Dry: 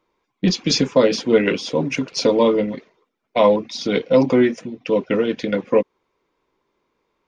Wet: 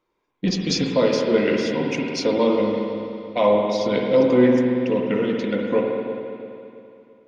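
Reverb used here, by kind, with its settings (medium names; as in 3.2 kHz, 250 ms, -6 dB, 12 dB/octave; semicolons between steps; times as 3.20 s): spring tank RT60 2.7 s, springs 48/56 ms, chirp 70 ms, DRR 0 dB; trim -5 dB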